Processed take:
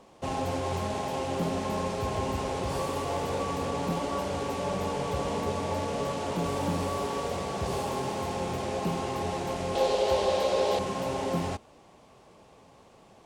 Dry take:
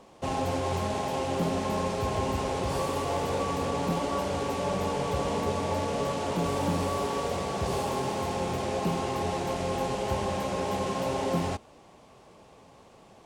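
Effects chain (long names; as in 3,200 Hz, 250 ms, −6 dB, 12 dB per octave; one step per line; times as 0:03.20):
0:09.75–0:10.79: octave-band graphic EQ 125/250/500/4,000 Hz −10/−4/+11/+10 dB
level −1.5 dB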